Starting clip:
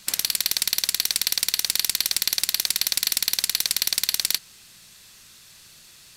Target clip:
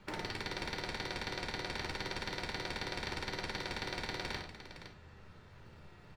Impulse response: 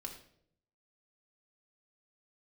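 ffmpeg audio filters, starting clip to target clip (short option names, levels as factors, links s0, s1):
-filter_complex "[0:a]lowpass=1100,acrossover=split=340[s0][s1];[s0]acrusher=samples=12:mix=1:aa=0.000001:lfo=1:lforange=12:lforate=0.55[s2];[s2][s1]amix=inputs=2:normalize=0,aecho=1:1:62|512:0.398|0.282[s3];[1:a]atrim=start_sample=2205,asetrate=74970,aresample=44100[s4];[s3][s4]afir=irnorm=-1:irlink=0,volume=3.35"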